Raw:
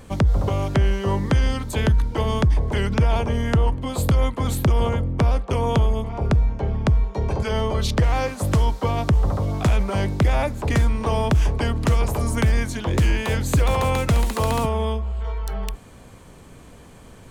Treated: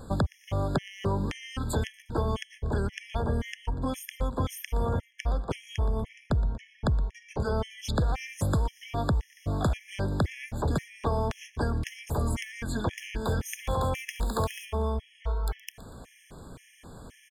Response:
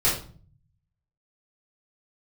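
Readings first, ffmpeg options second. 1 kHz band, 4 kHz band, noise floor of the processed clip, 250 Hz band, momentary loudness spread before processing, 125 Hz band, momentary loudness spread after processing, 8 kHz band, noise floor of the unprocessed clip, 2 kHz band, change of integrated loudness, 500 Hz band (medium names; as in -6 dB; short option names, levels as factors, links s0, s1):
-8.0 dB, -9.0 dB, -59 dBFS, -8.5 dB, 4 LU, -10.0 dB, 6 LU, -7.5 dB, -45 dBFS, -8.5 dB, -9.5 dB, -8.0 dB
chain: -af "acompressor=threshold=0.0631:ratio=4,aecho=1:1:119|238|357|476:0.126|0.0579|0.0266|0.0123,afftfilt=real='re*gt(sin(2*PI*1.9*pts/sr)*(1-2*mod(floor(b*sr/1024/1700),2)),0)':imag='im*gt(sin(2*PI*1.9*pts/sr)*(1-2*mod(floor(b*sr/1024/1700),2)),0)':win_size=1024:overlap=0.75"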